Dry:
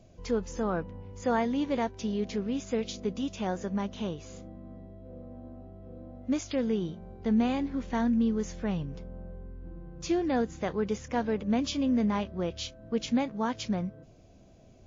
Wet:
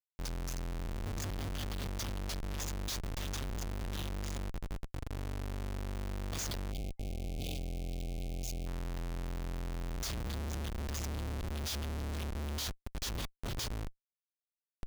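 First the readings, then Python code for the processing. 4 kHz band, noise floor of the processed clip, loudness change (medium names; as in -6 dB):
-0.5 dB, under -85 dBFS, -9.0 dB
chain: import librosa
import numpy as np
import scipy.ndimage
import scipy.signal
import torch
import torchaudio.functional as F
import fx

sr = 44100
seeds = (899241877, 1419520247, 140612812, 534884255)

y = scipy.signal.sosfilt(scipy.signal.cheby2(4, 40, [180.0, 1900.0], 'bandstop', fs=sr, output='sos'), x)
y = fx.schmitt(y, sr, flips_db=-49.5)
y = fx.spec_box(y, sr, start_s=6.72, length_s=1.95, low_hz=800.0, high_hz=2100.0, gain_db=-24)
y = F.gain(torch.from_numpy(y), 9.5).numpy()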